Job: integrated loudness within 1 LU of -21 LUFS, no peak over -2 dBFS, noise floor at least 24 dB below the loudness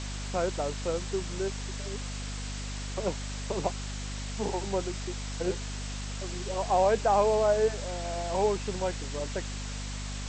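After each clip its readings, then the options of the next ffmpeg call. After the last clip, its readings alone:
hum 50 Hz; highest harmonic 250 Hz; hum level -34 dBFS; noise floor -36 dBFS; noise floor target -55 dBFS; loudness -31.0 LUFS; peak level -13.0 dBFS; loudness target -21.0 LUFS
-> -af "bandreject=f=50:t=h:w=4,bandreject=f=100:t=h:w=4,bandreject=f=150:t=h:w=4,bandreject=f=200:t=h:w=4,bandreject=f=250:t=h:w=4"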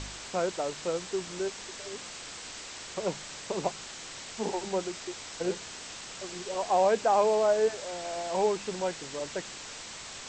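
hum not found; noise floor -43 dBFS; noise floor target -56 dBFS
-> -af "afftdn=nr=13:nf=-43"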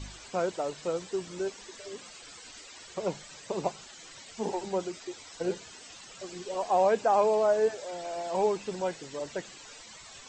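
noise floor -49 dBFS; noise floor target -55 dBFS
-> -af "afftdn=nr=6:nf=-49"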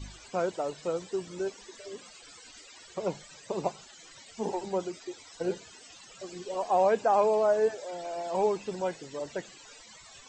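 noise floor -52 dBFS; noise floor target -55 dBFS
-> -af "afftdn=nr=6:nf=-52"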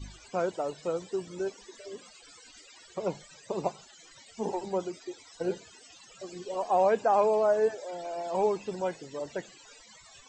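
noise floor -55 dBFS; loudness -30.5 LUFS; peak level -13.5 dBFS; loudness target -21.0 LUFS
-> -af "volume=2.99"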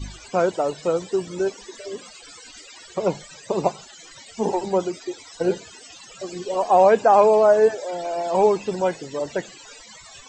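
loudness -21.0 LUFS; peak level -4.0 dBFS; noise floor -45 dBFS

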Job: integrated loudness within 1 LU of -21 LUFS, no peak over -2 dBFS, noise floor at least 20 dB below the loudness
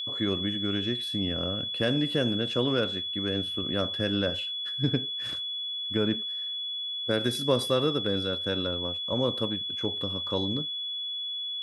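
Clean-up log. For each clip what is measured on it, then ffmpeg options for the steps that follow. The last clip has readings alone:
steady tone 3.4 kHz; tone level -31 dBFS; loudness -28.0 LUFS; peak level -12.0 dBFS; loudness target -21.0 LUFS
-> -af "bandreject=f=3400:w=30"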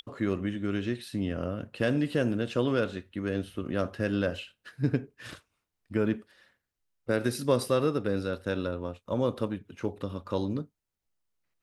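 steady tone not found; loudness -31.0 LUFS; peak level -13.0 dBFS; loudness target -21.0 LUFS
-> -af "volume=3.16"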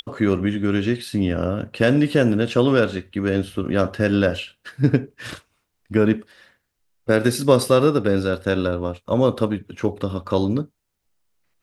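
loudness -21.0 LUFS; peak level -3.0 dBFS; noise floor -75 dBFS

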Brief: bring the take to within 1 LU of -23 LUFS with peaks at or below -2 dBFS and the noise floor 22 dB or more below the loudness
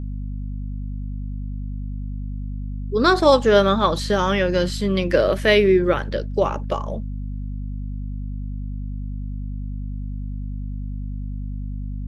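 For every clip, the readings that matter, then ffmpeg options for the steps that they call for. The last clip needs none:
hum 50 Hz; highest harmonic 250 Hz; hum level -26 dBFS; loudness -23.0 LUFS; peak level -2.5 dBFS; loudness target -23.0 LUFS
-> -af "bandreject=f=50:t=h:w=6,bandreject=f=100:t=h:w=6,bandreject=f=150:t=h:w=6,bandreject=f=200:t=h:w=6,bandreject=f=250:t=h:w=6"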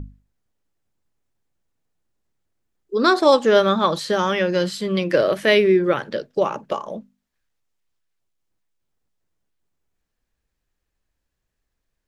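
hum not found; loudness -19.0 LUFS; peak level -2.5 dBFS; loudness target -23.0 LUFS
-> -af "volume=0.631"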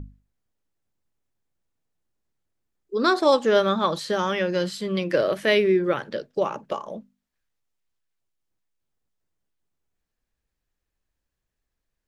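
loudness -23.0 LUFS; peak level -6.5 dBFS; noise floor -82 dBFS

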